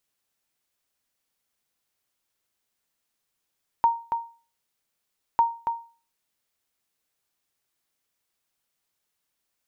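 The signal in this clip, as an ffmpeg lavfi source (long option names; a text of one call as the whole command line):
ffmpeg -f lavfi -i "aevalsrc='0.251*(sin(2*PI*928*mod(t,1.55))*exp(-6.91*mod(t,1.55)/0.37)+0.447*sin(2*PI*928*max(mod(t,1.55)-0.28,0))*exp(-6.91*max(mod(t,1.55)-0.28,0)/0.37))':duration=3.1:sample_rate=44100" out.wav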